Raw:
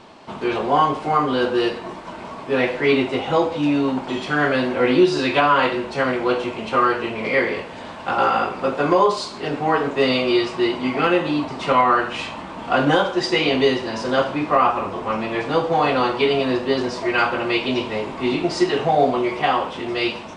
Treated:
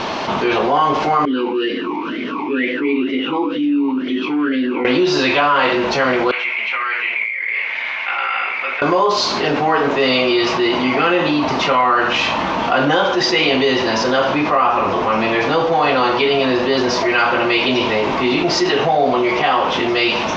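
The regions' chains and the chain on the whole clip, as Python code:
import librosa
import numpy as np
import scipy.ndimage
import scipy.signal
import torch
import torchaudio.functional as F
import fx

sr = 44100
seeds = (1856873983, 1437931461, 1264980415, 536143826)

y = fx.chain(x, sr, fx.peak_eq(hz=440.0, db=7.5, octaves=0.67),
    fx.vowel_sweep(vowels='i-u', hz=2.1), at=(1.25, 4.85))
y = fx.chain(y, sr, fx.bandpass_q(hz=2200.0, q=10.0),
    fx.over_compress(threshold_db=-40.0, ratio=-1.0), at=(6.31, 8.82))
y = scipy.signal.sosfilt(scipy.signal.ellip(4, 1.0, 60, 6200.0, 'lowpass', fs=sr, output='sos'), y)
y = fx.low_shelf(y, sr, hz=310.0, db=-6.0)
y = fx.env_flatten(y, sr, amount_pct=70)
y = y * librosa.db_to_amplitude(1.0)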